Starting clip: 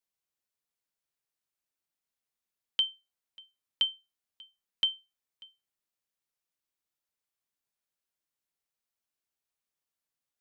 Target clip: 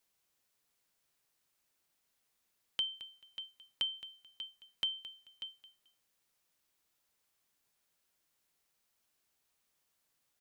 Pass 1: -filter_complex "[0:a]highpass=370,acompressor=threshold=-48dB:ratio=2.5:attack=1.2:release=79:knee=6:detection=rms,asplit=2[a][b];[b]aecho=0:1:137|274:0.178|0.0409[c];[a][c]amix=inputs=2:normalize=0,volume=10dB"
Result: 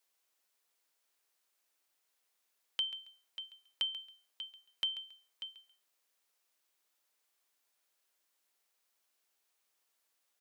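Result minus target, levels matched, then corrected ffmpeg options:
echo 81 ms early; 500 Hz band -3.0 dB
-filter_complex "[0:a]acompressor=threshold=-48dB:ratio=2.5:attack=1.2:release=79:knee=6:detection=rms,asplit=2[a][b];[b]aecho=0:1:218|436:0.178|0.0409[c];[a][c]amix=inputs=2:normalize=0,volume=10dB"

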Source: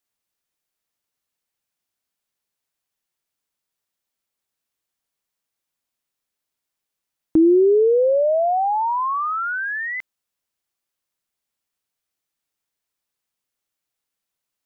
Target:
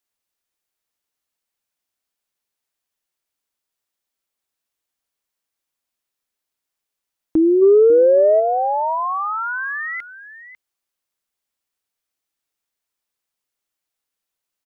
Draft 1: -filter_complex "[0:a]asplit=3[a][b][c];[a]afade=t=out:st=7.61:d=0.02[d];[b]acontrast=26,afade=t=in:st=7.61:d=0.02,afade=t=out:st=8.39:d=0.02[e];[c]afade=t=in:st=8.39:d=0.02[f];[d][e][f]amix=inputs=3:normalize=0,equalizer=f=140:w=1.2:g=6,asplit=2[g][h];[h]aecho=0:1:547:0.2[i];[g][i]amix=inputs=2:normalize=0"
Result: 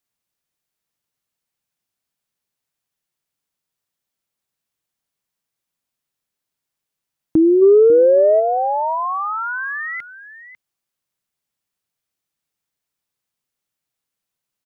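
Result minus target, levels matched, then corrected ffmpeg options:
125 Hz band +7.5 dB
-filter_complex "[0:a]asplit=3[a][b][c];[a]afade=t=out:st=7.61:d=0.02[d];[b]acontrast=26,afade=t=in:st=7.61:d=0.02,afade=t=out:st=8.39:d=0.02[e];[c]afade=t=in:st=8.39:d=0.02[f];[d][e][f]amix=inputs=3:normalize=0,equalizer=f=140:w=1.2:g=-5,asplit=2[g][h];[h]aecho=0:1:547:0.2[i];[g][i]amix=inputs=2:normalize=0"

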